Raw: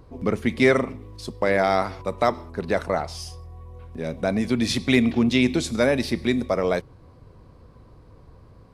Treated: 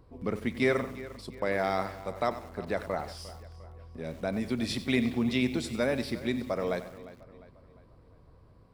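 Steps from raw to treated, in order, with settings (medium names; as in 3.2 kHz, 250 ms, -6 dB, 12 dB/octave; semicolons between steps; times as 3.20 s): band-stop 6.4 kHz, Q 6.8; filtered feedback delay 352 ms, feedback 47%, low-pass 4.8 kHz, level -16.5 dB; bit-crushed delay 94 ms, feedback 35%, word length 6-bit, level -13 dB; trim -8.5 dB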